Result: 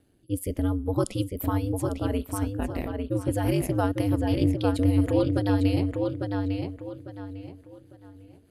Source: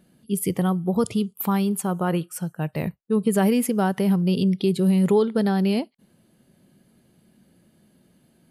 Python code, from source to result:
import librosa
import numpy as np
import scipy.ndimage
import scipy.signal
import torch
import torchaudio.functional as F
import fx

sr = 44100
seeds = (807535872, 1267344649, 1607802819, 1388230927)

y = fx.rotary_switch(x, sr, hz=0.7, then_hz=6.7, switch_at_s=3.2)
y = fx.echo_filtered(y, sr, ms=851, feedback_pct=31, hz=4400.0, wet_db=-4)
y = y * np.sin(2.0 * np.pi * 97.0 * np.arange(len(y)) / sr)